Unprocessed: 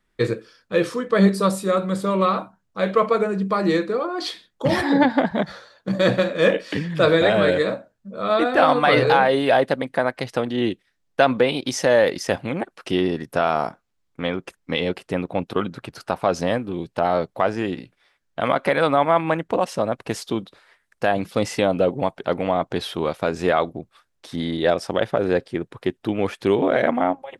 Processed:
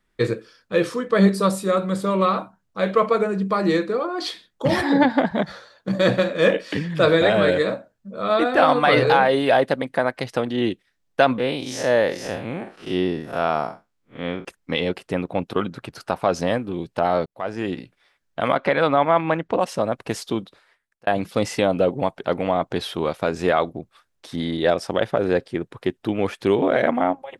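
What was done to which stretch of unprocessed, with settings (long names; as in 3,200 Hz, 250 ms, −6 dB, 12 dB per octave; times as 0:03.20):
0:11.38–0:14.45: spectrum smeared in time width 123 ms
0:17.26–0:17.71: fade in
0:18.57–0:19.59: low-pass filter 5,200 Hz
0:20.39–0:21.07: fade out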